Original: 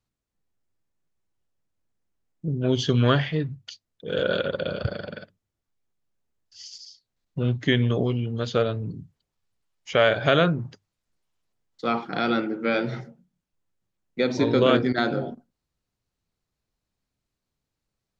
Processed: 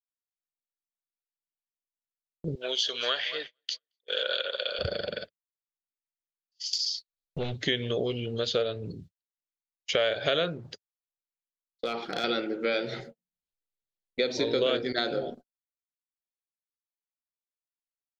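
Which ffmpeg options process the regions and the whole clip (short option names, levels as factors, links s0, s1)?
-filter_complex "[0:a]asettb=1/sr,asplit=3[s0][s1][s2];[s0]atrim=end=2.554[s3];[s1]atrim=start=2.55:end=4.79,asetpts=PTS-STARTPTS,afade=t=in:d=0.004:c=qsin,afade=t=out:st=2.236:d=0.004:c=qsin,highpass=850,aecho=1:1:225|450|675:0.133|0.0453|0.0154,atrim=end_sample=98784[s4];[s2]atrim=start=4.786[s5];[s3][s4]acrossfade=d=0.004:c1=hsin:c2=qsin[s6];[s6][s5]acrossfade=d=0.004:c1=qsin:c2=hsin,asettb=1/sr,asplit=3[s7][s8][s9];[s7]atrim=end=6.734[s10];[s8]atrim=start=6.73:end=7.54,asetpts=PTS-STARTPTS,afade=t=in:d=0.004:c=qsin,afade=t=out:st=0.806:d=0.004:c=qsin,acompressor=threshold=0.00447:ratio=2:attack=3.2:release=140:knee=1:detection=peak,aeval=exprs='0.075*sin(PI/2*3.16*val(0)/0.075)':c=same[s11];[s9]atrim=start=7.536[s12];[s10][s11]acrossfade=d=0.004:c1=hsin:c2=qsin[s13];[s13][s12]acrossfade=d=0.004:c1=qsin:c2=hsin,asettb=1/sr,asplit=3[s14][s15][s16];[s14]atrim=end=10.574[s17];[s15]atrim=start=10.57:end=12.24,asetpts=PTS-STARTPTS,afade=t=in:d=0.004:c=qsin,afade=t=out:st=1.666:d=0.004:c=qsin,acompressor=threshold=0.0282:ratio=2:attack=3.2:release=140:knee=1:detection=peak,volume=12.6,asoftclip=hard,volume=0.0794[s18];[s16]atrim=start=12.236[s19];[s17][s18]acrossfade=d=0.004:c1=hsin:c2=qsin[s20];[s20][s19]acrossfade=d=0.004:c1=qsin:c2=hsin,asettb=1/sr,asplit=3[s21][s22][s23];[s21]atrim=end=12.944[s24];[s22]atrim=start=12.94:end=14.2,asetpts=PTS-STARTPTS,afade=t=in:d=0.004:c=qsin,afade=t=out:st=1.256:d=0.004:c=qsin,bandreject=f=5600:w=5.1,acompressor=mode=upward:threshold=0.00631:ratio=2.5:attack=3.2:release=140:knee=2.83:detection=peak[s25];[s23]atrim=start=14.196[s26];[s24][s25]acrossfade=d=0.004:c1=hsin:c2=qsin[s27];[s27][s26]acrossfade=d=0.004:c1=qsin:c2=hsin,agate=range=0.0126:threshold=0.00794:ratio=16:detection=peak,equalizer=f=125:t=o:w=1:g=-10,equalizer=f=250:t=o:w=1:g=-7,equalizer=f=500:t=o:w=1:g=5,equalizer=f=1000:t=o:w=1:g=-8,equalizer=f=4000:t=o:w=1:g=8,acompressor=threshold=0.0251:ratio=2.5,volume=1.58"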